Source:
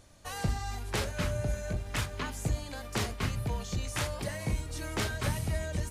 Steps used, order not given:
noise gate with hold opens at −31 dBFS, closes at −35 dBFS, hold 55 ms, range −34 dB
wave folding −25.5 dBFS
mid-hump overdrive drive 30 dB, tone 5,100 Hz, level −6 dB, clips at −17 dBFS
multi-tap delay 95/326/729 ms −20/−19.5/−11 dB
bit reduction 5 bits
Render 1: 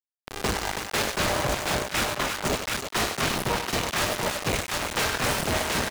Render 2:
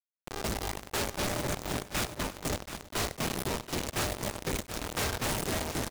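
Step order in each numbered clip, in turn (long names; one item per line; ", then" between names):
wave folding, then bit reduction, then multi-tap delay, then noise gate with hold, then mid-hump overdrive
noise gate with hold, then bit reduction, then mid-hump overdrive, then wave folding, then multi-tap delay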